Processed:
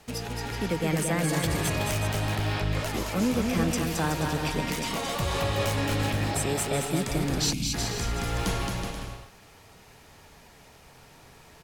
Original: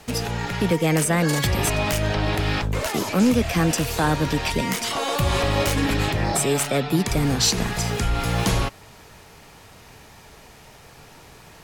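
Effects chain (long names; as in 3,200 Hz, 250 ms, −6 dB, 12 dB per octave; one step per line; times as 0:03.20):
bouncing-ball delay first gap 220 ms, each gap 0.7×, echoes 5
gain on a spectral selection 0:07.53–0:07.74, 330–2,100 Hz −19 dB
level −8 dB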